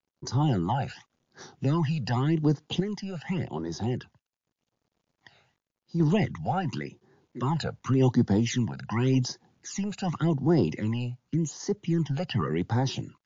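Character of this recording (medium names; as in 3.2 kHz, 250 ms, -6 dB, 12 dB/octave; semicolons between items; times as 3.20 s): phasing stages 12, 0.88 Hz, lowest notch 320–2700 Hz; a quantiser's noise floor 12-bit, dither none; random-step tremolo 2.5 Hz; MP3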